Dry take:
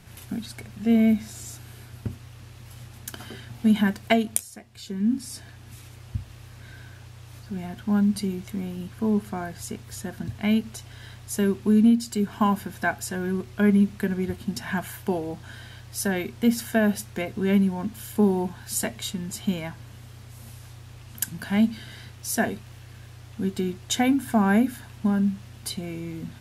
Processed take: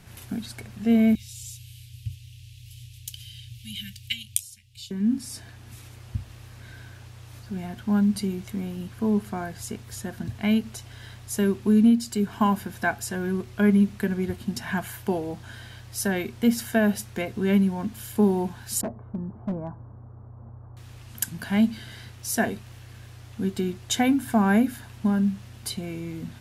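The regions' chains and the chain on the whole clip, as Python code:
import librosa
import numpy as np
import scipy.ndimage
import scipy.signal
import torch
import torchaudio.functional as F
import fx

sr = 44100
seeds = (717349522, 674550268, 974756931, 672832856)

y = fx.chain(x, sr, fx.ellip_bandstop(low_hz=120.0, high_hz=2900.0, order=3, stop_db=50),
    fx.peak_eq(hz=2500.0, db=4.0, octaves=1.3), at=(1.15, 4.91))
y = fx.chain(y, sr, fx.steep_lowpass(hz=1200.0, slope=36),
    fx.clip_hard(threshold_db=-24.0), at=(18.81, 20.77))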